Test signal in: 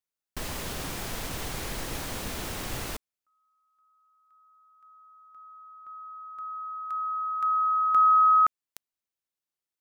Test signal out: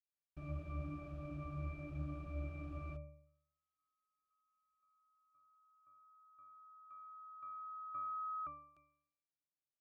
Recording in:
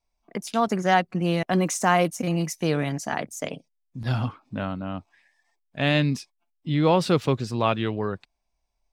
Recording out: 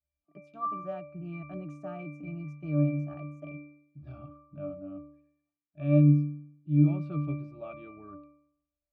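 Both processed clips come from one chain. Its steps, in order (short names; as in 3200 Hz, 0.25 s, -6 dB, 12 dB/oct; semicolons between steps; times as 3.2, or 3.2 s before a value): octave resonator D, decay 0.68 s; gain +7.5 dB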